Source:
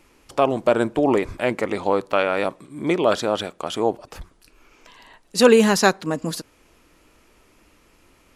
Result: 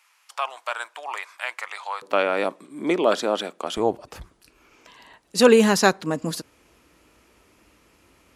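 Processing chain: high-pass 960 Hz 24 dB/octave, from 2.02 s 200 Hz, from 3.77 s 44 Hz; trim -1 dB

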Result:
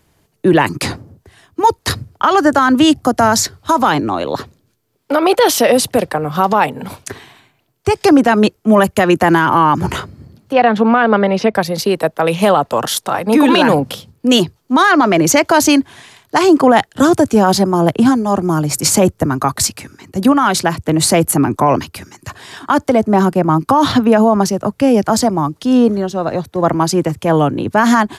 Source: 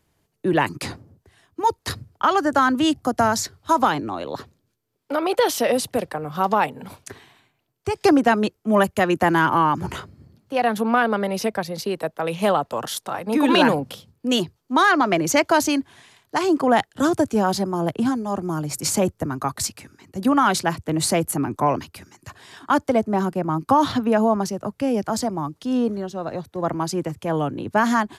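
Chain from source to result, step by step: 10.53–11.55 s: low-pass 3.4 kHz 12 dB/octave; 20.32–21.14 s: compression 2.5:1, threshold -21 dBFS, peak gain reduction 6 dB; loudness maximiser +11.5 dB; trim -1 dB

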